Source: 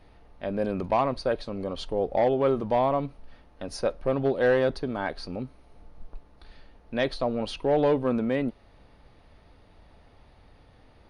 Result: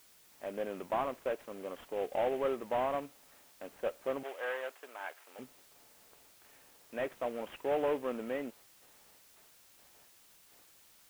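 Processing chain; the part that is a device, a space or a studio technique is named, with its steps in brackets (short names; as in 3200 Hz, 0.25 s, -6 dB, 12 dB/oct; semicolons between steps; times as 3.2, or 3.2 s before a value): gate with hold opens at -44 dBFS; army field radio (BPF 350–3300 Hz; CVSD 16 kbps; white noise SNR 24 dB); 4.23–5.39 HPF 790 Hz 12 dB/oct; gain -7 dB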